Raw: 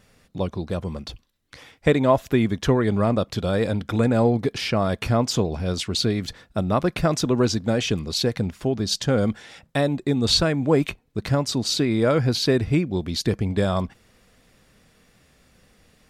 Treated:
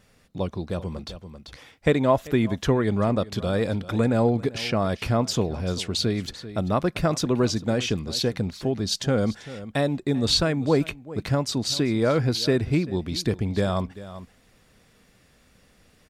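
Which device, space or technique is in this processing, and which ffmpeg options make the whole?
ducked delay: -filter_complex "[0:a]asplit=3[link_01][link_02][link_03];[link_02]adelay=390,volume=-5.5dB[link_04];[link_03]apad=whole_len=726828[link_05];[link_04][link_05]sidechaincompress=threshold=-36dB:ratio=3:attack=16:release=689[link_06];[link_01][link_06]amix=inputs=2:normalize=0,volume=-2dB"

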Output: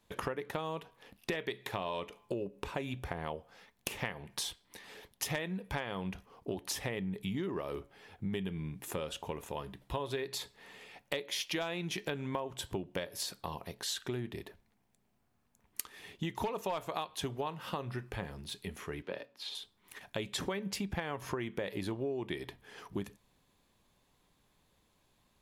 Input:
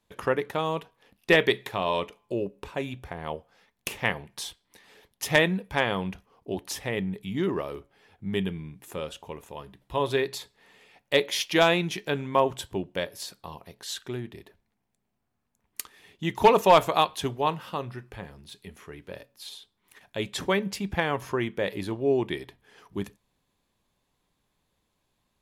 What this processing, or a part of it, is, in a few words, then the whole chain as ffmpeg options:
serial compression, peaks first: -filter_complex "[0:a]acompressor=threshold=-32dB:ratio=5,acompressor=threshold=-40dB:ratio=2,asettb=1/sr,asplit=3[link_01][link_02][link_03];[link_01]atrim=end=19.024[link_04];[link_02]atrim=start=19.02:end=19.55,asetpts=PTS-STARTPTS,afade=type=in:duration=0.004:curve=qsin,afade=type=out:start_time=0.526:duration=0.004:curve=qsin,acrossover=split=180 4900:gain=0.126 1 0.158[link_05][link_06][link_07];[link_05][link_06][link_07]amix=inputs=3:normalize=0[link_08];[link_03]atrim=start=19.546[link_09];[link_04][link_08]acrossfade=duration=0.004:curve1=hsin:curve2=qsin[link_10];[link_10][link_09]acrossfade=duration=0.004:curve1=qsin:curve2=hsin,volume=3.5dB"

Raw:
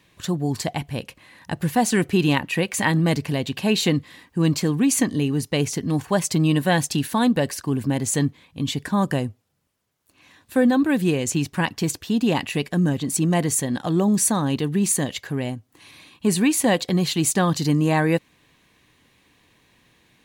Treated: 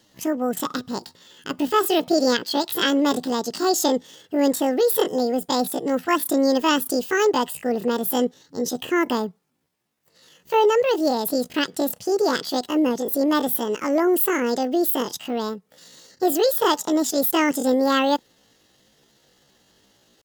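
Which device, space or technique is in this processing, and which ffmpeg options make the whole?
chipmunk voice: -af "asetrate=76340,aresample=44100,atempo=0.577676"

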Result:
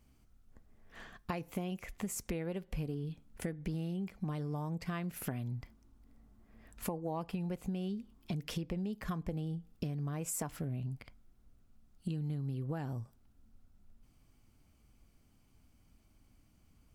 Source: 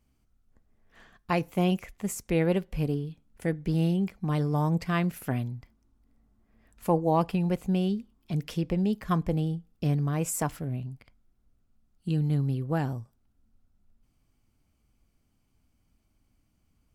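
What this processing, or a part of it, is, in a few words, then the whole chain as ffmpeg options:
serial compression, peaks first: -af "acompressor=threshold=-32dB:ratio=6,acompressor=threshold=-41dB:ratio=2.5,volume=4dB"

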